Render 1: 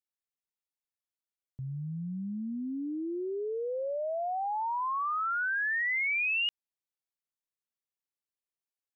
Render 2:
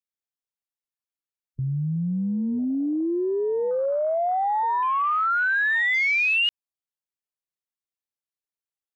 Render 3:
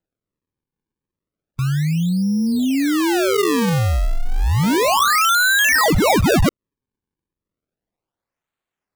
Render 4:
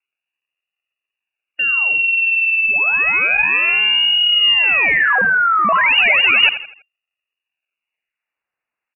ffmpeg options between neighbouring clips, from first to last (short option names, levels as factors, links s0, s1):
-filter_complex "[0:a]afwtdn=0.01,asplit=2[s0][s1];[s1]alimiter=level_in=4.22:limit=0.0631:level=0:latency=1,volume=0.237,volume=1.41[s2];[s0][s2]amix=inputs=2:normalize=0,volume=1.78"
-af "acrusher=samples=38:mix=1:aa=0.000001:lfo=1:lforange=60.8:lforate=0.32,volume=2.24"
-filter_complex "[0:a]asplit=5[s0][s1][s2][s3][s4];[s1]adelay=82,afreqshift=31,volume=0.237[s5];[s2]adelay=164,afreqshift=62,volume=0.0923[s6];[s3]adelay=246,afreqshift=93,volume=0.0359[s7];[s4]adelay=328,afreqshift=124,volume=0.0141[s8];[s0][s5][s6][s7][s8]amix=inputs=5:normalize=0,lowpass=f=2500:t=q:w=0.5098,lowpass=f=2500:t=q:w=0.6013,lowpass=f=2500:t=q:w=0.9,lowpass=f=2500:t=q:w=2.563,afreqshift=-2900,volume=1.26"